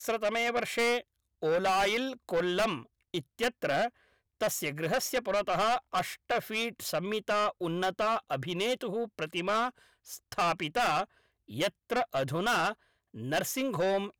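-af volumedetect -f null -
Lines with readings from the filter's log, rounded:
mean_volume: -31.6 dB
max_volume: -24.7 dB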